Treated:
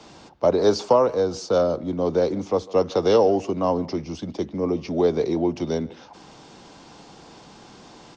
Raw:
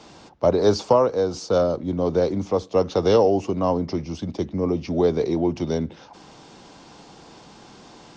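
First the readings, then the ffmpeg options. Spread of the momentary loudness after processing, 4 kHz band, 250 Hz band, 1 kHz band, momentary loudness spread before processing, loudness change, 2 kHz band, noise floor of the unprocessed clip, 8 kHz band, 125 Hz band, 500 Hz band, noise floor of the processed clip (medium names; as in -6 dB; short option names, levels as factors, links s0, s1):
11 LU, 0.0 dB, -1.0 dB, 0.0 dB, 10 LU, -0.5 dB, 0.0 dB, -47 dBFS, no reading, -4.0 dB, 0.0 dB, -47 dBFS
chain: -filter_complex "[0:a]acrossover=split=190[s0][s1];[s0]alimiter=level_in=2.66:limit=0.0631:level=0:latency=1:release=250,volume=0.376[s2];[s2][s1]amix=inputs=2:normalize=0,asplit=2[s3][s4];[s4]adelay=150,highpass=300,lowpass=3400,asoftclip=type=hard:threshold=0.237,volume=0.0891[s5];[s3][s5]amix=inputs=2:normalize=0"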